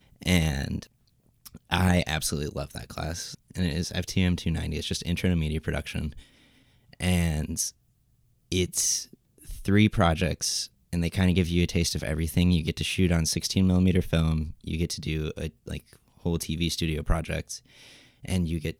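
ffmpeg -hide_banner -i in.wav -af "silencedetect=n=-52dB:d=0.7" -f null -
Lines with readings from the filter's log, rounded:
silence_start: 7.72
silence_end: 8.52 | silence_duration: 0.80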